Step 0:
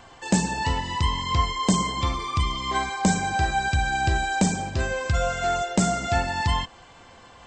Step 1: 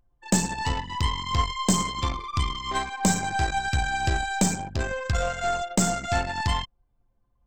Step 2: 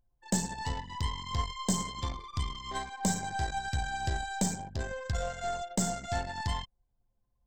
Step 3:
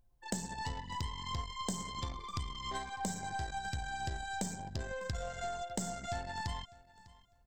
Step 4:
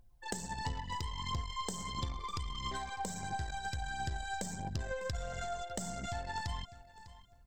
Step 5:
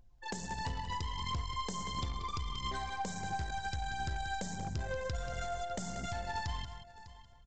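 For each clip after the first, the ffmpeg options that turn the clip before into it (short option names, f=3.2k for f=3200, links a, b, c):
-af "crystalizer=i=1:c=0,aeval=exprs='0.447*(cos(1*acos(clip(val(0)/0.447,-1,1)))-cos(1*PI/2))+0.0398*(cos(3*acos(clip(val(0)/0.447,-1,1)))-cos(3*PI/2))+0.0178*(cos(8*acos(clip(val(0)/0.447,-1,1)))-cos(8*PI/2))':c=same,anlmdn=25.1"
-af "equalizer=f=315:t=o:w=0.33:g=-5,equalizer=f=1.25k:t=o:w=0.33:g=-8,equalizer=f=2.5k:t=o:w=0.33:g=-9,volume=-7dB"
-af "acompressor=threshold=-41dB:ratio=4,aecho=1:1:601|1202:0.0891|0.0196,volume=4dB"
-af "acompressor=threshold=-40dB:ratio=3,aphaser=in_gain=1:out_gain=1:delay=2.5:decay=0.39:speed=1.5:type=triangular,volume=3dB"
-af "aresample=16000,asoftclip=type=hard:threshold=-31.5dB,aresample=44100,aecho=1:1:185:0.316,volume=1dB"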